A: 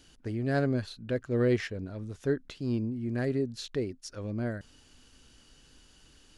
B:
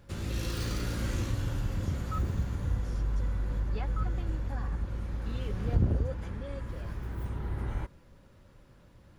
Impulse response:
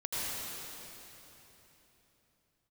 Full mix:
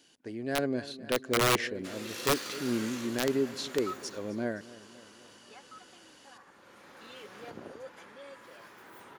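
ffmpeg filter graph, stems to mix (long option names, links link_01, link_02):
-filter_complex "[0:a]bandreject=frequency=1300:width=7.4,volume=-2dB,asplit=2[link_01][link_02];[link_02]volume=-18.5dB[link_03];[1:a]highpass=frequency=930:poles=1,adelay=1750,volume=4.5dB,afade=type=out:start_time=3.99:duration=0.43:silence=0.375837,afade=type=in:start_time=6.45:duration=0.46:silence=0.421697[link_04];[link_03]aecho=0:1:259|518|777|1036|1295|1554|1813|2072|2331:1|0.59|0.348|0.205|0.121|0.0715|0.0422|0.0249|0.0147[link_05];[link_01][link_04][link_05]amix=inputs=3:normalize=0,highpass=250,dynaudnorm=framelen=180:gausssize=9:maxgain=5dB,aeval=exprs='(mod(8.41*val(0)+1,2)-1)/8.41':channel_layout=same"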